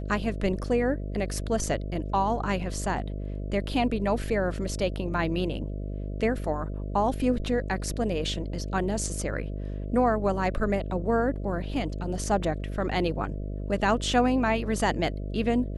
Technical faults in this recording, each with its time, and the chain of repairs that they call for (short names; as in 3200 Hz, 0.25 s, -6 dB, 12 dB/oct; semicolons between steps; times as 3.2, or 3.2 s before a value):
buzz 50 Hz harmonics 13 -33 dBFS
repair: de-hum 50 Hz, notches 13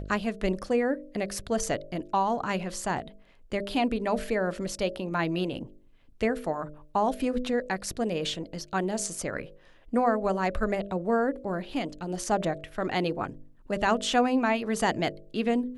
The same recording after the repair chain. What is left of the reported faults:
none